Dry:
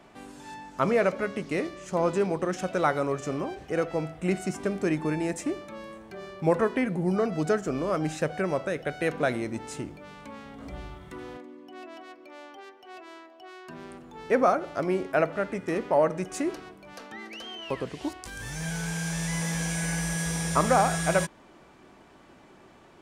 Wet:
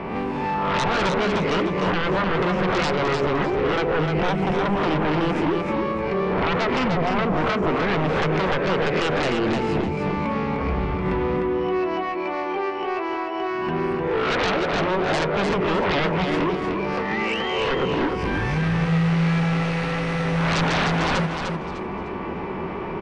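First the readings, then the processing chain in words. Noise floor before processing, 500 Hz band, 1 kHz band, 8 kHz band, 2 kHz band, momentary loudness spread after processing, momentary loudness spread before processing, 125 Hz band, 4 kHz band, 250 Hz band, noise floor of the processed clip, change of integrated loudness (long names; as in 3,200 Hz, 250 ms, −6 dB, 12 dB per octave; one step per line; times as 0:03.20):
−54 dBFS, +5.0 dB, +7.5 dB, can't be measured, +9.0 dB, 5 LU, 20 LU, +9.0 dB, +11.5 dB, +7.5 dB, −29 dBFS, +5.5 dB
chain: peak hold with a rise ahead of every peak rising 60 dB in 0.56 s
EQ curve with evenly spaced ripples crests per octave 0.81, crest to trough 7 dB
downward compressor 2 to 1, threshold −43 dBFS, peak gain reduction 15 dB
high-frequency loss of the air 440 metres
sine wavefolder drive 15 dB, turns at −23 dBFS
repeating echo 302 ms, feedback 28%, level −5 dB
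level +3.5 dB
AAC 96 kbit/s 22,050 Hz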